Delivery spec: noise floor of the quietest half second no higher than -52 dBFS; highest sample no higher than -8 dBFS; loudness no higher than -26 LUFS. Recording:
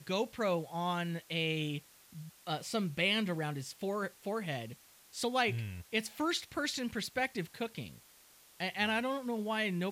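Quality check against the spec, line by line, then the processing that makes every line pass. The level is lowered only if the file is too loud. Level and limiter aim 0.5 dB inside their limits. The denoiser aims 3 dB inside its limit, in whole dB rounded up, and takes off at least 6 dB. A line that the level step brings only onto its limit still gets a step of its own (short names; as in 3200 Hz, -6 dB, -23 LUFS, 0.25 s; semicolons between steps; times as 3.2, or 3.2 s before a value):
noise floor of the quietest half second -61 dBFS: OK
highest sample -18.5 dBFS: OK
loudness -35.0 LUFS: OK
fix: none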